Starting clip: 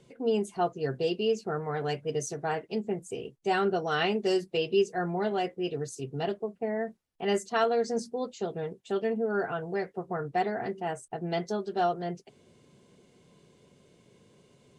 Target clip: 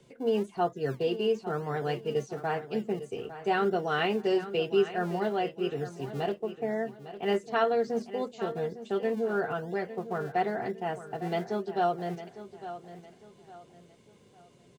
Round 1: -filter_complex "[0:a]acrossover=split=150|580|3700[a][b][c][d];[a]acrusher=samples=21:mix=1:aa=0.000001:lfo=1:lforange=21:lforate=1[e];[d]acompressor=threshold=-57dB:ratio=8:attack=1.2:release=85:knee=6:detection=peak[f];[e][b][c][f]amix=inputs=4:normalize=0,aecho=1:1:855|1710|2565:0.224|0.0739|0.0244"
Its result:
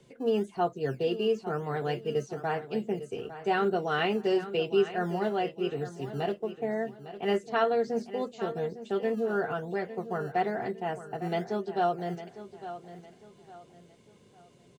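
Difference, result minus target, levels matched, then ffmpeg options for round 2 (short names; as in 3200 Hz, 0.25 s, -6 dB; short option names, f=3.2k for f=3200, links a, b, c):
decimation with a swept rate: distortion -8 dB
-filter_complex "[0:a]acrossover=split=150|580|3700[a][b][c][d];[a]acrusher=samples=47:mix=1:aa=0.000001:lfo=1:lforange=47:lforate=1[e];[d]acompressor=threshold=-57dB:ratio=8:attack=1.2:release=85:knee=6:detection=peak[f];[e][b][c][f]amix=inputs=4:normalize=0,aecho=1:1:855|1710|2565:0.224|0.0739|0.0244"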